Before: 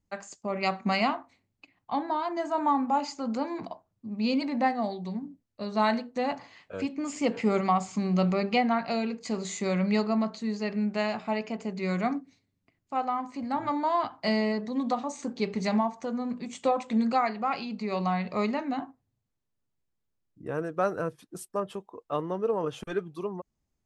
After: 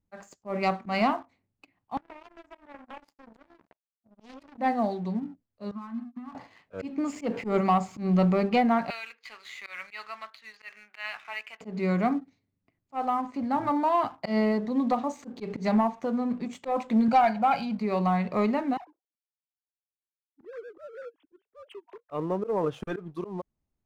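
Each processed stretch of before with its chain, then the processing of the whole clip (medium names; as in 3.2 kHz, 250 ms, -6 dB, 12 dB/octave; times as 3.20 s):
1.97–4.58 s: compression 2.5:1, threshold -35 dBFS + power-law waveshaper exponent 3 + loudspeaker Doppler distortion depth 0.89 ms
5.71–6.35 s: compression 12:1, threshold -30 dBFS + two resonant band-passes 520 Hz, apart 2.3 oct
8.90–11.61 s: Butterworth band-pass 2.2 kHz, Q 1 + treble shelf 2.1 kHz +7.5 dB
17.08–17.79 s: comb 1.3 ms, depth 91% + hard clipper -13 dBFS
18.77–22.11 s: formants replaced by sine waves + compression, threshold -42 dBFS + three bands expanded up and down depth 100%
whole clip: treble shelf 3.1 kHz -12 dB; waveshaping leveller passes 1; slow attack 118 ms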